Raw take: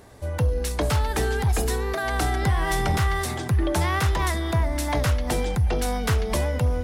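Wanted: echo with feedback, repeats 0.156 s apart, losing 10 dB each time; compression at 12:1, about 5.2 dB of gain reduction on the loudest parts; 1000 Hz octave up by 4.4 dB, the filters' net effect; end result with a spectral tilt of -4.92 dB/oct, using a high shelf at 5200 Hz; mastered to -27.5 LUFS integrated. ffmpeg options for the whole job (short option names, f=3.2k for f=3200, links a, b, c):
-af "equalizer=f=1k:t=o:g=5.5,highshelf=f=5.2k:g=4.5,acompressor=threshold=-22dB:ratio=12,aecho=1:1:156|312|468|624:0.316|0.101|0.0324|0.0104,volume=-1dB"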